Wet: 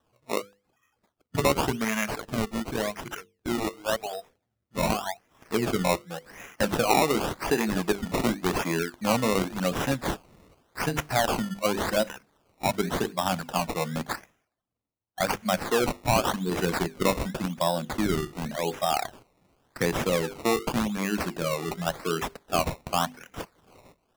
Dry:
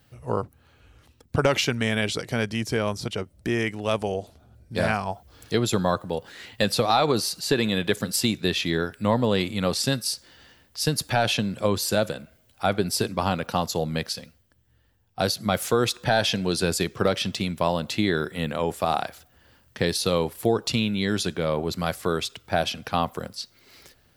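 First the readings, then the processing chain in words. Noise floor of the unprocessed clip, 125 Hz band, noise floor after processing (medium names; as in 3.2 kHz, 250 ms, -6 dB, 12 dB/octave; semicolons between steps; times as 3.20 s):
-62 dBFS, -4.5 dB, -79 dBFS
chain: spectral noise reduction 21 dB; high-pass 130 Hz; hum notches 50/100/150/200/250/300/350/400/450/500 Hz; decimation with a swept rate 19×, swing 100% 0.89 Hz; trim -1 dB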